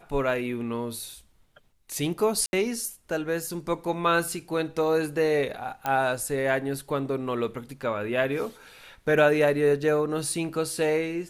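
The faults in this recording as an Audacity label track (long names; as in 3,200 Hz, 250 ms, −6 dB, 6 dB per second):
2.460000	2.530000	drop-out 71 ms
5.860000	5.860000	click −14 dBFS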